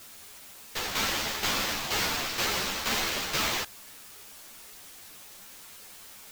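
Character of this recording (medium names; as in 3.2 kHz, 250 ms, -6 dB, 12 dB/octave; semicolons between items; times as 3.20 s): aliases and images of a low sample rate 10 kHz, jitter 0%; tremolo saw down 2.1 Hz, depth 65%; a quantiser's noise floor 8-bit, dither triangular; a shimmering, thickened sound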